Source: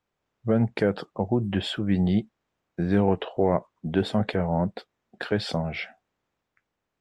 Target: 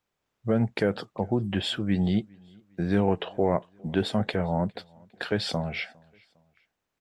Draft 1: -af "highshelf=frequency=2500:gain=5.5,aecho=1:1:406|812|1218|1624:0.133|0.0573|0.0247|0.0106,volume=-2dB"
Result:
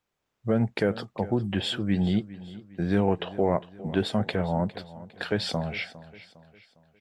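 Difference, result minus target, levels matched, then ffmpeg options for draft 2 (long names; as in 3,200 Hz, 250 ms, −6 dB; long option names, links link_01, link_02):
echo-to-direct +10.5 dB
-af "highshelf=frequency=2500:gain=5.5,aecho=1:1:406|812:0.0398|0.0171,volume=-2dB"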